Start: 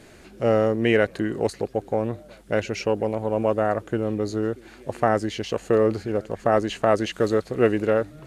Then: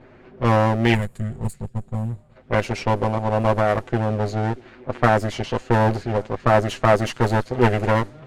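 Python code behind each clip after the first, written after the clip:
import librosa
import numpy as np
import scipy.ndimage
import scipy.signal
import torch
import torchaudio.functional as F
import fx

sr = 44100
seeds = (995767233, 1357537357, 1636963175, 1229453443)

y = fx.lower_of_two(x, sr, delay_ms=7.9)
y = fx.env_lowpass(y, sr, base_hz=1600.0, full_db=-18.5)
y = fx.spec_box(y, sr, start_s=0.95, length_s=1.41, low_hz=220.0, high_hz=6700.0, gain_db=-15)
y = y * 10.0 ** (3.0 / 20.0)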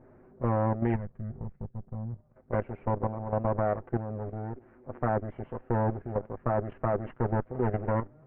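y = fx.level_steps(x, sr, step_db=10)
y = scipy.ndimage.gaussian_filter1d(y, 5.7, mode='constant')
y = y * 10.0 ** (-5.0 / 20.0)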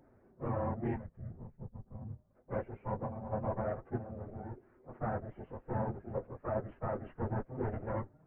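y = fx.phase_scramble(x, sr, seeds[0], window_ms=50)
y = y * 10.0 ** (-8.0 / 20.0)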